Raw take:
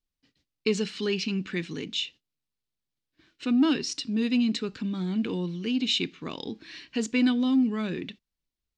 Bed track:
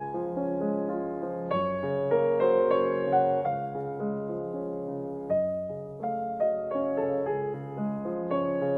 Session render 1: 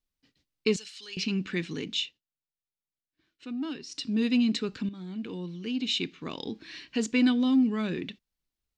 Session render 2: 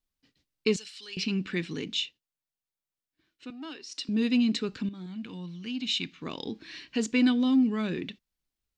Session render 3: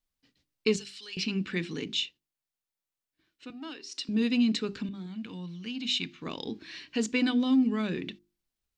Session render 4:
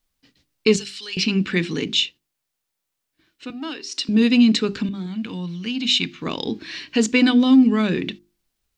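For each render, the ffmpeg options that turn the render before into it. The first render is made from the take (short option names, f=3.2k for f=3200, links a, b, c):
-filter_complex "[0:a]asettb=1/sr,asplit=3[a][b][c];[a]atrim=end=0.764[d];[b]atrim=start=0.76:end=1.17,asetpts=PTS-STARTPTS,afade=t=in:d=0.004:c=qsin,afade=t=out:st=0.406:d=0.004:c=qsin,aderivative[e];[c]atrim=start=1.166[f];[d][e]acrossfade=d=0.004:c1=hsin:c2=qsin[g];[g][f]acrossfade=d=0.004:c1=qsin:c2=hsin,asplit=4[h][i][j][k];[h]atrim=end=2.14,asetpts=PTS-STARTPTS,afade=t=out:st=2:d=0.14:silence=0.266073[l];[i]atrim=start=2.14:end=3.9,asetpts=PTS-STARTPTS,volume=-11.5dB[m];[j]atrim=start=3.9:end=4.89,asetpts=PTS-STARTPTS,afade=t=in:d=0.14:silence=0.266073,afade=t=out:st=0.986:d=0.004:c=hsin:silence=0.251189[n];[k]atrim=start=4.89,asetpts=PTS-STARTPTS,afade=t=in:d=1.68:silence=0.251189[o];[l][m][n][o]concat=n=4:v=0:a=1"
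-filter_complex "[0:a]asettb=1/sr,asplit=3[a][b][c];[a]atrim=end=0.824[d];[b]atrim=start=0.82:end=1.76,asetpts=PTS-STARTPTS,afade=t=in:d=0.004:c=qsin,afade=t=out:st=0.936:d=0.004:c=qsin,bandreject=f=6.5k:w=12[e];[c]atrim=start=1.756[f];[d][e]acrossfade=d=0.004:c1=hsin:c2=qsin[g];[g][f]acrossfade=d=0.004:c1=qsin:c2=hsin,asettb=1/sr,asplit=3[h][i][j];[h]atrim=end=3.504[k];[i]atrim=start=3.5:end=4.09,asetpts=PTS-STARTPTS,afade=t=in:d=0.004:c=qsin,afade=t=out:st=0.586:d=0.004:c=qsin,highpass=450[l];[j]atrim=start=4.086[m];[k][l]acrossfade=d=0.004:c1=hsin:c2=qsin[n];[n][m]acrossfade=d=0.004:c1=qsin:c2=hsin,asettb=1/sr,asplit=3[o][p][q];[o]atrim=end=5.064[r];[p]atrim=start=5.06:end=6.2,asetpts=PTS-STARTPTS,afade=t=in:d=0.004:c=qsin,afade=t=out:st=1.136:d=0.004:c=qsin,equalizer=f=410:w=1.7:g=-11.5[s];[q]atrim=start=6.196[t];[r][s]acrossfade=d=0.004:c1=hsin:c2=qsin[u];[u][t]acrossfade=d=0.004:c1=qsin:c2=hsin"
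-af "bandreject=f=50:t=h:w=6,bandreject=f=100:t=h:w=6,bandreject=f=150:t=h:w=6,bandreject=f=200:t=h:w=6,bandreject=f=250:t=h:w=6,bandreject=f=300:t=h:w=6,bandreject=f=350:t=h:w=6,bandreject=f=400:t=h:w=6"
-af "volume=10.5dB,alimiter=limit=-3dB:level=0:latency=1"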